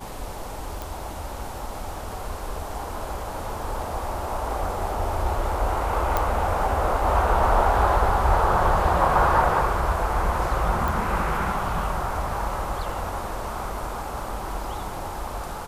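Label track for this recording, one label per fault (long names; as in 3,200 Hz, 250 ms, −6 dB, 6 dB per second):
0.820000	0.820000	click
6.170000	6.170000	click −8 dBFS
10.880000	10.880000	click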